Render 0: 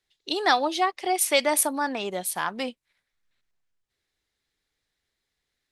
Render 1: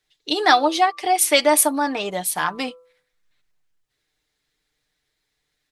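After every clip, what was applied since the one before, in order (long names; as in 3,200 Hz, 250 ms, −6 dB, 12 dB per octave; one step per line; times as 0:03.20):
comb filter 6.6 ms, depth 54%
hum removal 167.1 Hz, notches 8
level +4.5 dB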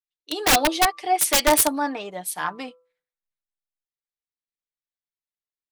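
wrap-around overflow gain 8.5 dB
multiband upward and downward expander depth 70%
level −2.5 dB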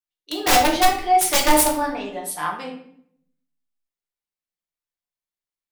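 rectangular room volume 120 cubic metres, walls mixed, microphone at 0.87 metres
level −2 dB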